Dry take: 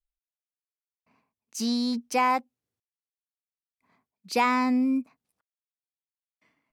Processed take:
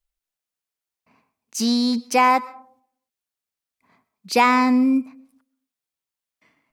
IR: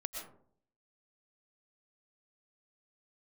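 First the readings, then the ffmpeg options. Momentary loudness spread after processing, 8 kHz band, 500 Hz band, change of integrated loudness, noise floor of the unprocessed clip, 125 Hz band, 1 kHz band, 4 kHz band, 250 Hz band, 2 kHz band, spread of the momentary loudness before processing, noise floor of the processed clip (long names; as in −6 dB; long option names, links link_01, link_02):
8 LU, +7.5 dB, +7.0 dB, +7.0 dB, below −85 dBFS, can't be measured, +7.5 dB, +7.5 dB, +6.5 dB, +7.5 dB, 7 LU, below −85 dBFS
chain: -filter_complex "[0:a]asplit=2[link_01][link_02];[1:a]atrim=start_sample=2205,lowshelf=frequency=350:gain=-8[link_03];[link_02][link_03]afir=irnorm=-1:irlink=0,volume=-12.5dB[link_04];[link_01][link_04]amix=inputs=2:normalize=0,volume=6dB"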